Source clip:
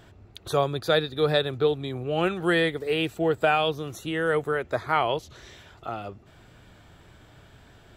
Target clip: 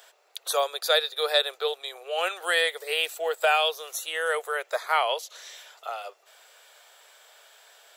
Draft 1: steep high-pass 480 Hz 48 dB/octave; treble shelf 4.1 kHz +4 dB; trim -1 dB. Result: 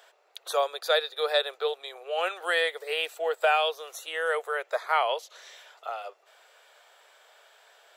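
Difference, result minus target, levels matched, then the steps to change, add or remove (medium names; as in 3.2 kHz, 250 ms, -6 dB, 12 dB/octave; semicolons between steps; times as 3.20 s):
8 kHz band -7.0 dB
change: treble shelf 4.1 kHz +15 dB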